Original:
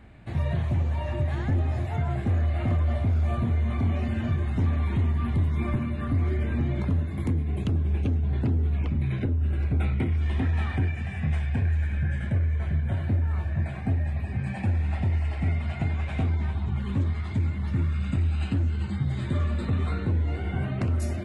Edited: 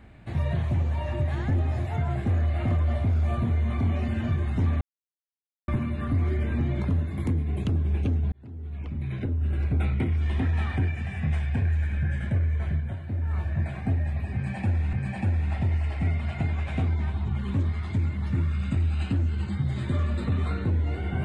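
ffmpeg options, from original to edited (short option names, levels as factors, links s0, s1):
-filter_complex "[0:a]asplit=7[s0][s1][s2][s3][s4][s5][s6];[s0]atrim=end=4.81,asetpts=PTS-STARTPTS,afade=t=out:st=4.806:d=0.004:c=hsin[s7];[s1]atrim=start=4.81:end=5.68,asetpts=PTS-STARTPTS,volume=0[s8];[s2]atrim=start=5.68:end=8.32,asetpts=PTS-STARTPTS,afade=t=in:d=0.004:c=hsin,afade=t=out:st=2.636:d=0.004:c=hsin[s9];[s3]atrim=start=8.32:end=12.99,asetpts=PTS-STARTPTS,afade=t=in:d=1.25,afade=t=out:st=4.38:d=0.29:silence=0.375837[s10];[s4]atrim=start=12.99:end=13.07,asetpts=PTS-STARTPTS,volume=0.376[s11];[s5]atrim=start=13.07:end=14.932,asetpts=PTS-STARTPTS,afade=t=in:d=0.29:silence=0.375837[s12];[s6]atrim=start=14.338[s13];[s7][s8][s9][s10][s11][s12]concat=n=6:v=0:a=1[s14];[s14][s13]acrossfade=d=0.004:c1=hsin:c2=hsin"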